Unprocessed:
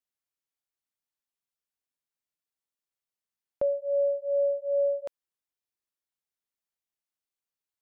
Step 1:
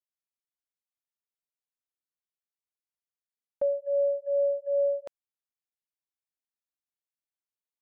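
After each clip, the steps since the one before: gate -33 dBFS, range -10 dB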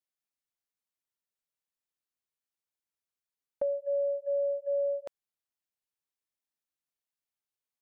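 compression, threshold -27 dBFS, peak gain reduction 4.5 dB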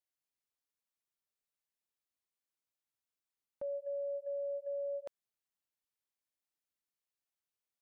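peak limiter -32 dBFS, peak gain reduction 10.5 dB; trim -2.5 dB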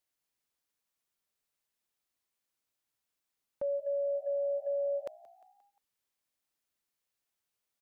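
frequency-shifting echo 176 ms, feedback 55%, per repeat +61 Hz, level -22 dB; trim +6 dB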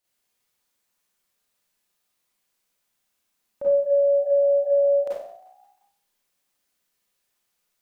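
Schroeder reverb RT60 0.54 s, combs from 31 ms, DRR -7.5 dB; trim +2.5 dB

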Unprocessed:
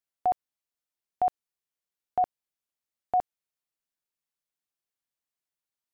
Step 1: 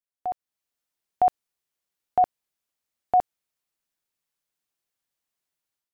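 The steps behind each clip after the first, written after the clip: level rider gain up to 12 dB; trim -6.5 dB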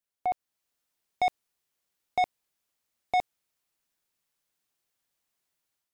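saturation -25 dBFS, distortion -9 dB; trim +3.5 dB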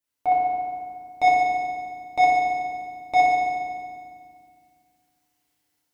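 FDN reverb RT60 2 s, low-frequency decay 1.5×, high-frequency decay 0.85×, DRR -7 dB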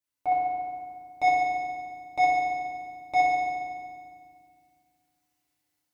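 comb of notches 230 Hz; trim -3.5 dB

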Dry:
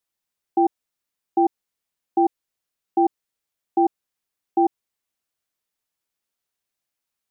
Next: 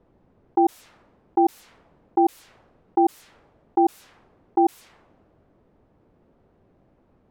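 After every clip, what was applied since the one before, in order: level-controlled noise filter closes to 420 Hz, open at -20.5 dBFS; level flattener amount 50%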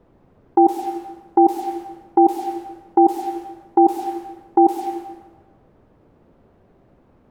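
plate-style reverb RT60 1.1 s, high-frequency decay 0.75×, pre-delay 90 ms, DRR 6.5 dB; trim +5.5 dB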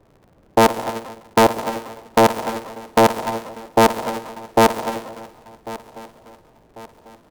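cycle switcher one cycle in 3, inverted; feedback delay 1095 ms, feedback 42%, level -18 dB

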